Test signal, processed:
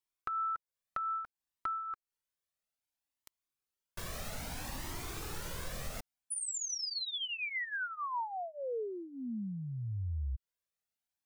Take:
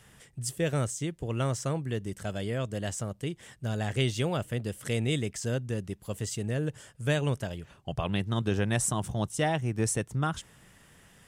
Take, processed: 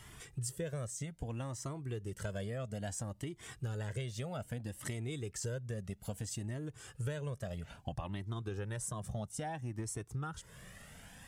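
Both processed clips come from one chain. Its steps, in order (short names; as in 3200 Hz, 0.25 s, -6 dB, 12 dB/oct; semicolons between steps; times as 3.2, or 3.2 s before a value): dynamic EQ 2900 Hz, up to -5 dB, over -52 dBFS, Q 1.7; compressor 12:1, threshold -39 dBFS; cascading flanger rising 0.61 Hz; gain +7 dB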